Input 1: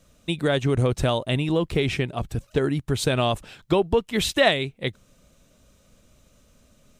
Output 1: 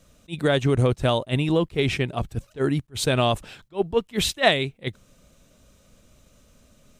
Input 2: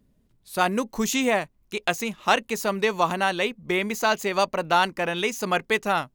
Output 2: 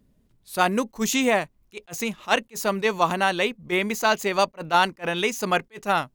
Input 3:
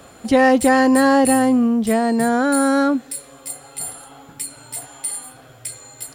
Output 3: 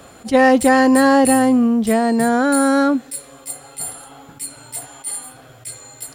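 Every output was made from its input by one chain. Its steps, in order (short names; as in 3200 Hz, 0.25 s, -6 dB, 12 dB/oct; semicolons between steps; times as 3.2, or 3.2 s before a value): attack slew limiter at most 390 dB/s; gain +1.5 dB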